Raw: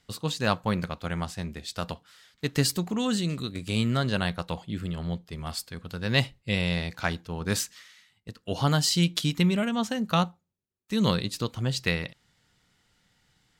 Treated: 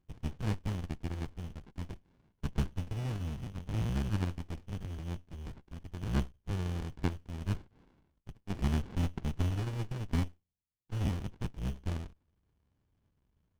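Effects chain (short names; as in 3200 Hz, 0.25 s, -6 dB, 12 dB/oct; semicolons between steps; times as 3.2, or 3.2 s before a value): cycle switcher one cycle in 2, muted; inverted band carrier 3200 Hz; running maximum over 65 samples; gain -6 dB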